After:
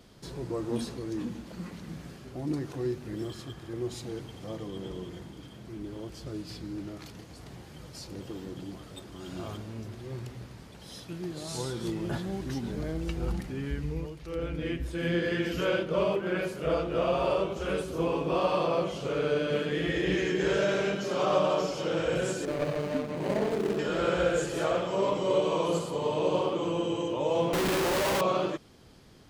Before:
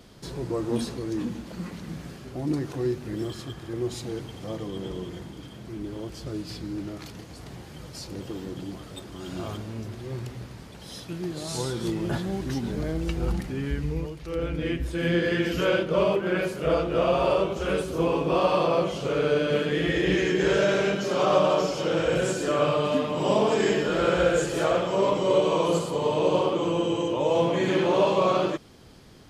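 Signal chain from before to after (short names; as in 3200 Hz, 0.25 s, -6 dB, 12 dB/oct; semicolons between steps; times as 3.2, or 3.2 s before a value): 22.45–23.79 median filter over 41 samples; 27.53–28.21 Schmitt trigger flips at -39.5 dBFS; gain -4.5 dB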